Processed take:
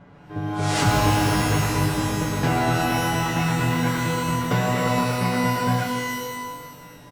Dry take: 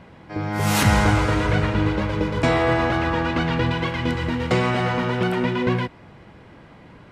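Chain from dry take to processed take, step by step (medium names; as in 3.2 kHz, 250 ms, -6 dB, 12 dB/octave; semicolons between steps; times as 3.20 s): comb 6.9 ms, depth 96%; formant shift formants -6 st; pitch-shifted reverb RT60 1.4 s, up +12 st, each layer -2 dB, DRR 4.5 dB; trim -5.5 dB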